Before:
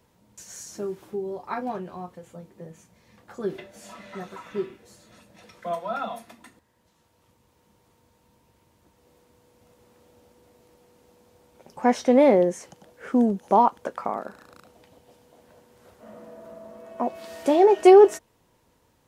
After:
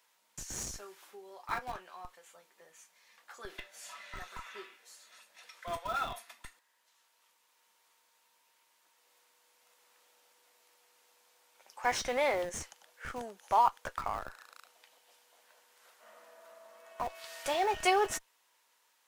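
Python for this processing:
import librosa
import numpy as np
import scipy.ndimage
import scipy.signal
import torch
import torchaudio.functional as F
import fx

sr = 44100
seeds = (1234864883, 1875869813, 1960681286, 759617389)

p1 = scipy.signal.sosfilt(scipy.signal.butter(2, 1300.0, 'highpass', fs=sr, output='sos'), x)
p2 = fx.schmitt(p1, sr, flips_db=-36.0)
y = p1 + F.gain(torch.from_numpy(p2), -5.5).numpy()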